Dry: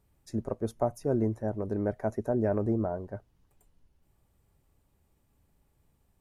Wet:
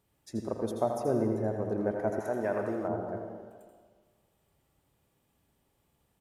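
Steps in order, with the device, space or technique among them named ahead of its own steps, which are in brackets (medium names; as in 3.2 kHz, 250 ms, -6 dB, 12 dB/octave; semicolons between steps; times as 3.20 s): PA in a hall (high-pass 200 Hz 6 dB/octave; peaking EQ 3.2 kHz +4.5 dB 0.41 oct; delay 82 ms -8 dB; reverberation RT60 1.6 s, pre-delay 86 ms, DRR 4 dB); 2.19–2.88 s: tilt shelf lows -7.5 dB, about 810 Hz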